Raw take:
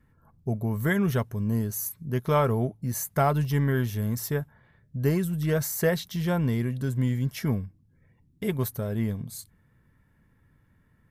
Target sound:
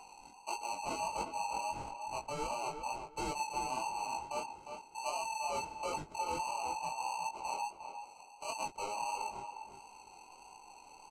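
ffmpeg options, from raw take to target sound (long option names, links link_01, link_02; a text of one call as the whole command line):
ffmpeg -i in.wav -filter_complex "[0:a]afftfilt=real='real(if(between(b,1,1008),(2*floor((b-1)/48)+1)*48-b,b),0)':imag='imag(if(between(b,1,1008),(2*floor((b-1)/48)+1)*48-b,b),0)*if(between(b,1,1008),-1,1)':win_size=2048:overlap=0.75,acrossover=split=250 3400:gain=0.158 1 0.178[link_01][link_02][link_03];[link_01][link_02][link_03]amix=inputs=3:normalize=0,acrusher=samples=25:mix=1:aa=0.000001,areverse,acompressor=threshold=-37dB:ratio=4,areverse,lowpass=frequency=7700:width_type=q:width=2.1,asplit=2[link_04][link_05];[link_05]asoftclip=type=tanh:threshold=-35.5dB,volume=-7dB[link_06];[link_04][link_06]amix=inputs=2:normalize=0,acompressor=mode=upward:threshold=-44dB:ratio=2.5,flanger=delay=19:depth=5.3:speed=1.5,asplit=2[link_07][link_08];[link_08]adelay=355,lowpass=frequency=2600:poles=1,volume=-7dB,asplit=2[link_09][link_10];[link_10]adelay=355,lowpass=frequency=2600:poles=1,volume=0.22,asplit=2[link_11][link_12];[link_12]adelay=355,lowpass=frequency=2600:poles=1,volume=0.22[link_13];[link_07][link_09][link_11][link_13]amix=inputs=4:normalize=0,adynamicequalizer=threshold=0.00251:dfrequency=2400:dqfactor=0.7:tfrequency=2400:tqfactor=0.7:attack=5:release=100:ratio=0.375:range=2.5:mode=cutabove:tftype=highshelf" out.wav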